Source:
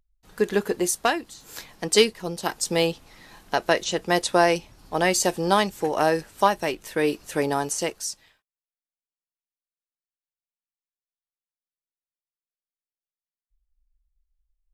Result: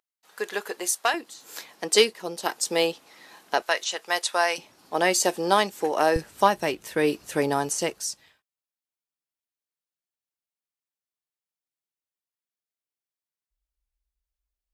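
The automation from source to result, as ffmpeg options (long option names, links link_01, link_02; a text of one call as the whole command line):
ffmpeg -i in.wav -af "asetnsamples=nb_out_samples=441:pad=0,asendcmd='1.14 highpass f 320;3.62 highpass f 840;4.58 highpass f 270;6.16 highpass f 73',highpass=670" out.wav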